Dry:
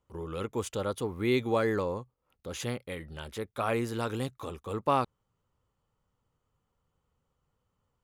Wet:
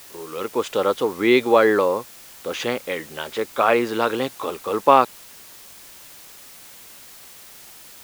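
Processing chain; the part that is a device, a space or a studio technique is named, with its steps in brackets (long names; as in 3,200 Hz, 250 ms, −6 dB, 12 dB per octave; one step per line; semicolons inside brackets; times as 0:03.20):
dictaphone (band-pass filter 330–4,000 Hz; automatic gain control gain up to 9 dB; tape wow and flutter; white noise bed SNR 21 dB)
level +4.5 dB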